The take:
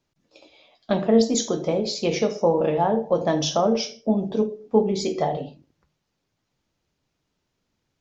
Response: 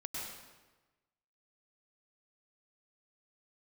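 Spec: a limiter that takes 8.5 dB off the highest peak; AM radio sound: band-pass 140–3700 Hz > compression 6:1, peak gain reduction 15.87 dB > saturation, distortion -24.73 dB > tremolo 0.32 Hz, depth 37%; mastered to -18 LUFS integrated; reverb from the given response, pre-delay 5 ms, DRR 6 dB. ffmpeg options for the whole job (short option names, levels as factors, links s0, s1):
-filter_complex "[0:a]alimiter=limit=0.2:level=0:latency=1,asplit=2[s0][s1];[1:a]atrim=start_sample=2205,adelay=5[s2];[s1][s2]afir=irnorm=-1:irlink=0,volume=0.473[s3];[s0][s3]amix=inputs=2:normalize=0,highpass=140,lowpass=3700,acompressor=threshold=0.02:ratio=6,asoftclip=threshold=0.0596,tremolo=f=0.32:d=0.37,volume=12.6"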